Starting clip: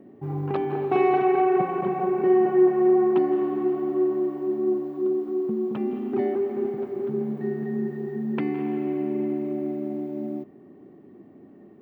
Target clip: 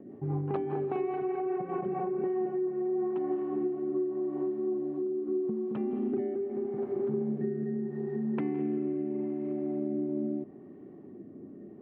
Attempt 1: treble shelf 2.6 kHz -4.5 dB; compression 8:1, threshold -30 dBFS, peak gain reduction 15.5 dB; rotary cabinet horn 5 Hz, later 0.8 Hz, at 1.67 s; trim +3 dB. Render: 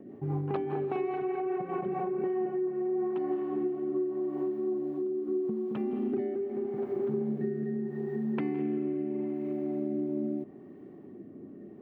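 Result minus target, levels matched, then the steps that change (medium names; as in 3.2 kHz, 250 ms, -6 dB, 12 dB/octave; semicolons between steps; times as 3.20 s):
4 kHz band +5.5 dB
change: treble shelf 2.6 kHz -14.5 dB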